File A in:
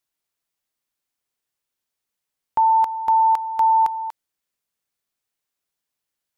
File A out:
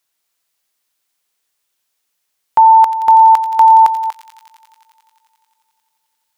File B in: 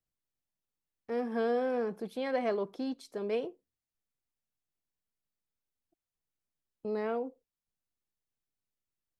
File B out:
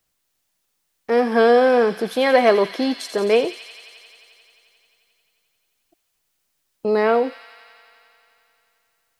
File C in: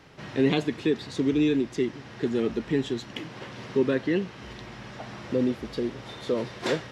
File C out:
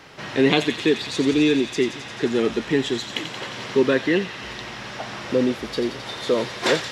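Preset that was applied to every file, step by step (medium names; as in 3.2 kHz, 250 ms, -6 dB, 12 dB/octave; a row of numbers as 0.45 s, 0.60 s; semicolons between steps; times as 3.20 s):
bass shelf 360 Hz -9.5 dB; feedback echo behind a high-pass 88 ms, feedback 83%, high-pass 2.7 kHz, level -7.5 dB; peak normalisation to -2 dBFS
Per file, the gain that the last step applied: +11.0 dB, +19.5 dB, +10.0 dB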